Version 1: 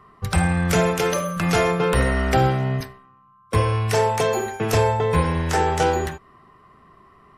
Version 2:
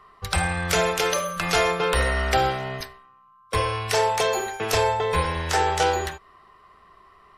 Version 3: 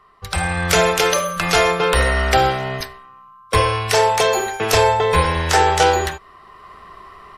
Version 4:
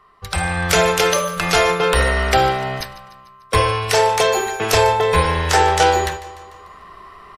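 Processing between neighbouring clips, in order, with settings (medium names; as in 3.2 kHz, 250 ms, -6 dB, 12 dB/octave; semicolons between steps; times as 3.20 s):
ten-band graphic EQ 125 Hz -11 dB, 250 Hz -10 dB, 4 kHz +5 dB
level rider gain up to 13.5 dB; trim -1 dB
feedback delay 148 ms, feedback 57%, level -17.5 dB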